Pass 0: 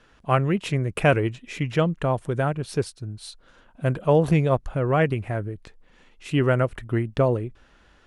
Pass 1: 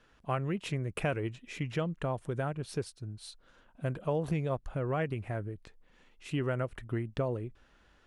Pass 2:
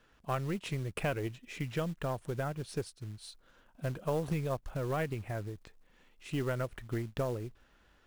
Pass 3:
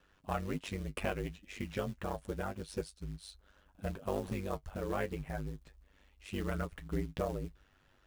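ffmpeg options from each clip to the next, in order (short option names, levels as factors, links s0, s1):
-af "acompressor=threshold=0.0794:ratio=2.5,volume=0.422"
-af "aeval=exprs='0.106*(cos(1*acos(clip(val(0)/0.106,-1,1)))-cos(1*PI/2))+0.0119*(cos(2*acos(clip(val(0)/0.106,-1,1)))-cos(2*PI/2))+0.00188*(cos(6*acos(clip(val(0)/0.106,-1,1)))-cos(6*PI/2))':c=same,acrusher=bits=5:mode=log:mix=0:aa=0.000001,volume=0.841"
-af "flanger=delay=8.6:depth=1.9:regen=44:speed=0.3:shape=triangular,aeval=exprs='val(0)*sin(2*PI*49*n/s)':c=same,volume=1.68"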